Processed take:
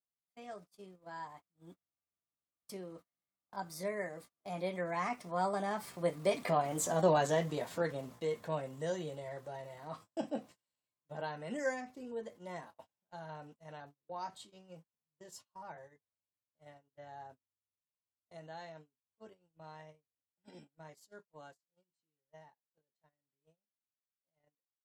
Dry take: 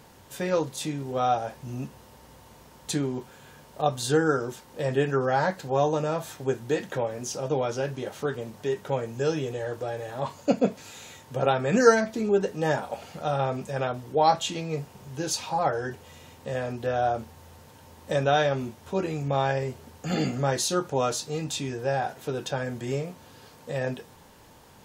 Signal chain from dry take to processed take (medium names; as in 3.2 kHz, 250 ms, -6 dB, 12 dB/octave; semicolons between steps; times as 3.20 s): Doppler pass-by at 6.98 s, 23 m/s, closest 14 m; pitch shift +3.5 st; gate -52 dBFS, range -33 dB; trim -1 dB